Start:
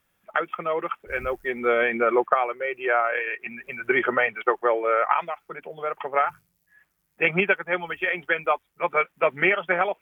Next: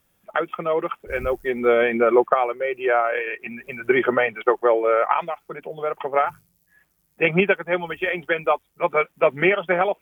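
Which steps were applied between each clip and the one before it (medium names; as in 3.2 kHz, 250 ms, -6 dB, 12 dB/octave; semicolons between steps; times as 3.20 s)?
peaking EQ 1.7 kHz -7.5 dB 2 oct; trim +6.5 dB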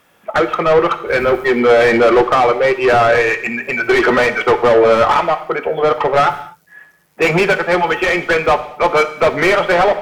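overdrive pedal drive 28 dB, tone 1.6 kHz, clips at -3.5 dBFS; gated-style reverb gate 270 ms falling, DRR 9.5 dB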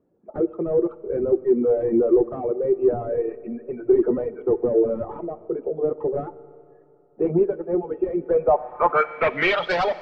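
reverb removal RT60 0.99 s; Schroeder reverb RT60 2.8 s, combs from 27 ms, DRR 16.5 dB; low-pass sweep 370 Hz -> 4.7 kHz, 8.18–9.72 s; trim -9 dB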